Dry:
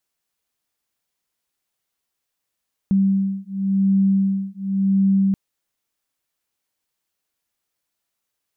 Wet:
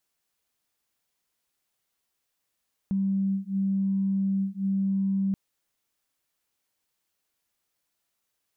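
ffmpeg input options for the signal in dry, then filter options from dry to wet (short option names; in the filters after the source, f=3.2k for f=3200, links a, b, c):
-f lavfi -i "aevalsrc='0.112*(sin(2*PI*194*t)+sin(2*PI*194.92*t))':d=2.43:s=44100"
-af "aeval=exprs='0.237*(cos(1*acos(clip(val(0)/0.237,-1,1)))-cos(1*PI/2))+0.0015*(cos(5*acos(clip(val(0)/0.237,-1,1)))-cos(5*PI/2))':c=same,alimiter=limit=-22.5dB:level=0:latency=1:release=37"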